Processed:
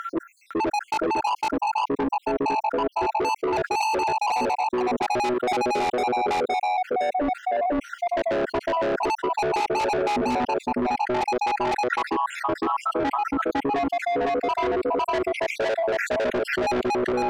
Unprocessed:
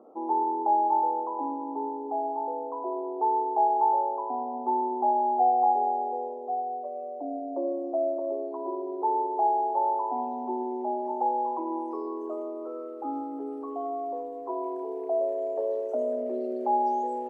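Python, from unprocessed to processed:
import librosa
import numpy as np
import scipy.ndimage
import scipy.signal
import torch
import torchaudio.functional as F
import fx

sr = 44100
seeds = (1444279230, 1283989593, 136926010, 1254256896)

p1 = fx.spec_dropout(x, sr, seeds[0], share_pct=74)
p2 = fx.fold_sine(p1, sr, drive_db=11, ceiling_db=-14.5)
p3 = p1 + (p2 * librosa.db_to_amplitude(-11.0))
p4 = fx.lowpass(p3, sr, hz=1100.0, slope=6)
p5 = 10.0 ** (-33.0 / 20.0) * np.tanh(p4 / 10.0 ** (-33.0 / 20.0))
p6 = p5 + fx.echo_single(p5, sr, ms=506, db=-3.5, dry=0)
p7 = fx.env_flatten(p6, sr, amount_pct=100)
y = p7 * librosa.db_to_amplitude(8.0)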